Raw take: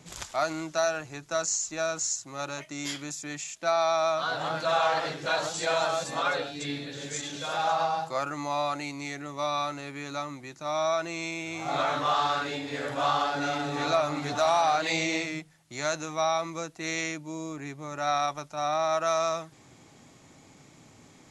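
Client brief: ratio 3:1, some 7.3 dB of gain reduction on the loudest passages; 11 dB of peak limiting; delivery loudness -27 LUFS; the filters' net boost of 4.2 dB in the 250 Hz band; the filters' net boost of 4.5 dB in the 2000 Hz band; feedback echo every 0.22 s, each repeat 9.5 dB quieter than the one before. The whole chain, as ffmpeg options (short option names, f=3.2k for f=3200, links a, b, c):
-af "equalizer=f=250:t=o:g=5.5,equalizer=f=2k:t=o:g=6,acompressor=threshold=-29dB:ratio=3,alimiter=level_in=1.5dB:limit=-24dB:level=0:latency=1,volume=-1.5dB,aecho=1:1:220|440|660|880:0.335|0.111|0.0365|0.012,volume=7.5dB"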